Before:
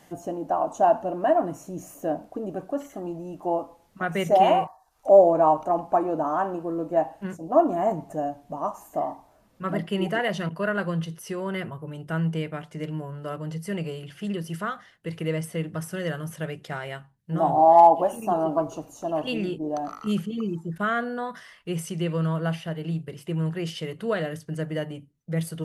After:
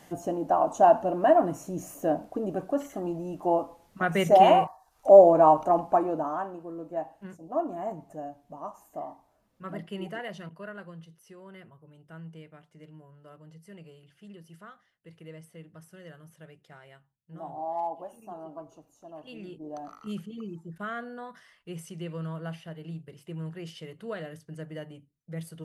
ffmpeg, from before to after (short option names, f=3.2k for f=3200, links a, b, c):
-af "volume=9dB,afade=t=out:st=5.73:d=0.79:silence=0.281838,afade=t=out:st=9.95:d=1.02:silence=0.398107,afade=t=in:st=19.25:d=0.53:silence=0.398107"